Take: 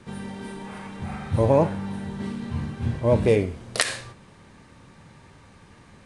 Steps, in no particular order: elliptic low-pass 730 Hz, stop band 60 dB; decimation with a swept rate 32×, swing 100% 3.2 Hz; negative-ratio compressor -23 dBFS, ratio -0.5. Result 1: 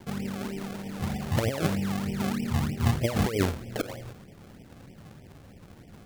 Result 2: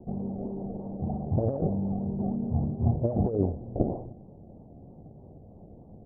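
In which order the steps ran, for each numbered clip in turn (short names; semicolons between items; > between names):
elliptic low-pass > negative-ratio compressor > decimation with a swept rate; decimation with a swept rate > elliptic low-pass > negative-ratio compressor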